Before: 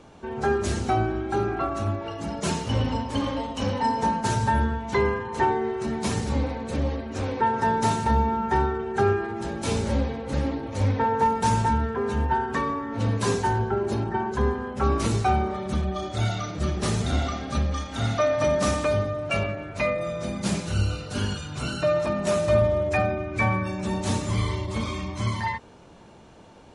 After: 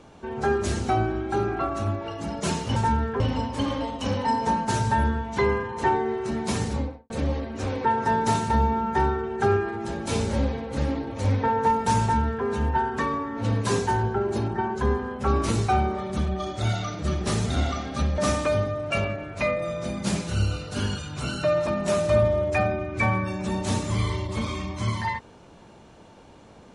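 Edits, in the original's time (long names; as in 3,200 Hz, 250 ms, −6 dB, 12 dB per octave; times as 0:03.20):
0:06.21–0:06.66: fade out and dull
0:11.57–0:12.01: duplicate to 0:02.76
0:17.74–0:18.57: remove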